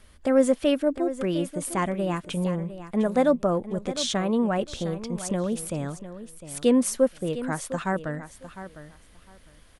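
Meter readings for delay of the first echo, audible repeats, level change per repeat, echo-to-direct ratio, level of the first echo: 705 ms, 2, −14.5 dB, −13.0 dB, −13.0 dB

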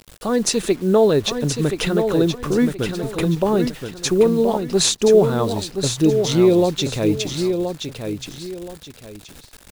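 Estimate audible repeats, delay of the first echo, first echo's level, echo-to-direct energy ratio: 2, 1,025 ms, −7.0 dB, −6.5 dB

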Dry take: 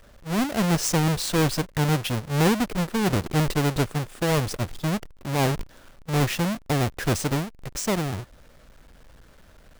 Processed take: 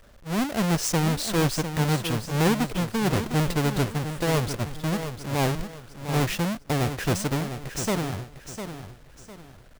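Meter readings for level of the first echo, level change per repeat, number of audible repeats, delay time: −9.5 dB, −10.0 dB, 3, 703 ms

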